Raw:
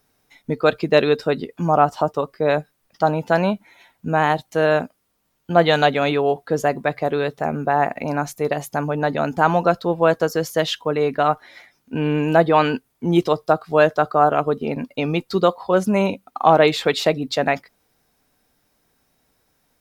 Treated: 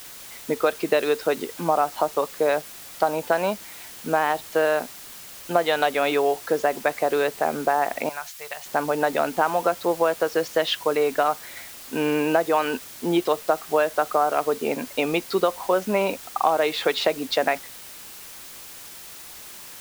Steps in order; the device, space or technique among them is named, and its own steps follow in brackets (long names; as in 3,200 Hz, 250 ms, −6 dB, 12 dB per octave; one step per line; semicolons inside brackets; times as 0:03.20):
baby monitor (band-pass filter 360–4,200 Hz; downward compressor, threshold −20 dBFS, peak gain reduction 11 dB; white noise bed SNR 17 dB)
0:08.09–0:08.66: guitar amp tone stack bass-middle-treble 10-0-10
level +3 dB